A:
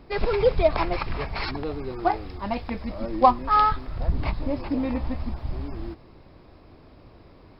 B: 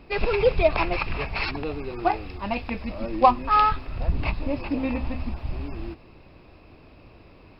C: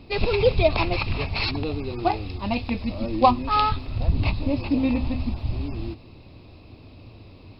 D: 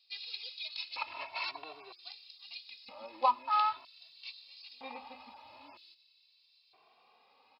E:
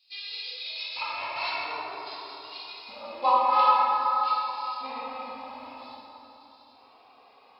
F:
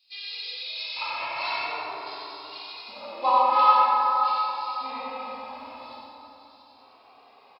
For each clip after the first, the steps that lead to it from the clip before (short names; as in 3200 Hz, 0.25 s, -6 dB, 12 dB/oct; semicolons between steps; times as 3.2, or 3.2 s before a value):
bell 2600 Hz +12.5 dB 0.25 oct; de-hum 127.9 Hz, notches 3
fifteen-band EQ 100 Hz +11 dB, 250 Hz +5 dB, 1600 Hz -7 dB, 4000 Hz +9 dB
LFO high-pass square 0.52 Hz 890–4100 Hz; endless flanger 2.1 ms +0.42 Hz; gain -9 dB
plate-style reverb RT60 3.9 s, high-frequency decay 0.35×, DRR -9.5 dB
echo 90 ms -3 dB